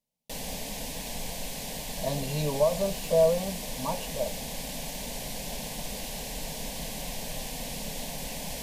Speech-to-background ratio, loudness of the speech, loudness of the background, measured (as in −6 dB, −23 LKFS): 6.5 dB, −29.0 LKFS, −35.5 LKFS